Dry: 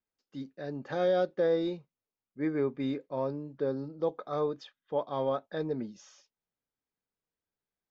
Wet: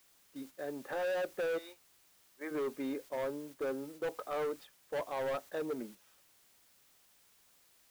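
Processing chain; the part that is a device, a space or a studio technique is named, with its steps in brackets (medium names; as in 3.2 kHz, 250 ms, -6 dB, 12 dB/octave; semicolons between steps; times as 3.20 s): 1.57–2.50 s: high-pass 1.3 kHz -> 550 Hz 12 dB/octave; aircraft radio (band-pass 330–2600 Hz; hard clipper -32 dBFS, distortion -7 dB; white noise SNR 20 dB; gate -50 dBFS, range -7 dB)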